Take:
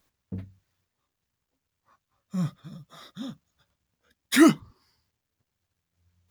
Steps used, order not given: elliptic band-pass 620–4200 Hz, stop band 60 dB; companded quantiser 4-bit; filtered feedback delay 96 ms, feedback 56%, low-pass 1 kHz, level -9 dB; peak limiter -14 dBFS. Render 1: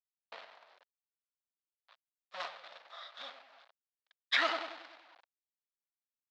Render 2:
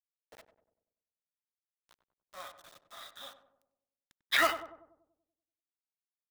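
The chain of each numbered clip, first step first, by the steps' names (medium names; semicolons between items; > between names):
filtered feedback delay > peak limiter > companded quantiser > elliptic band-pass; elliptic band-pass > peak limiter > companded quantiser > filtered feedback delay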